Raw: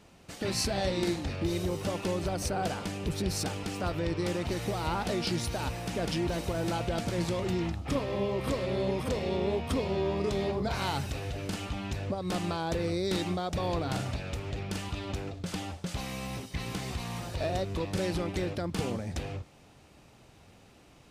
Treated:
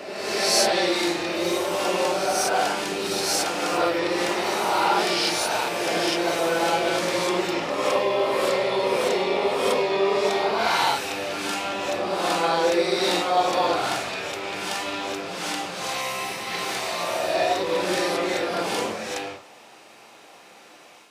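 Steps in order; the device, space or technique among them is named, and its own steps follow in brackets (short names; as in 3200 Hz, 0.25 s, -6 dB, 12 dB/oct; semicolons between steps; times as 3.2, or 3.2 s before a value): ghost voice (reverse; reverb RT60 1.7 s, pre-delay 20 ms, DRR -5.5 dB; reverse; HPF 590 Hz 12 dB/oct); gain +7 dB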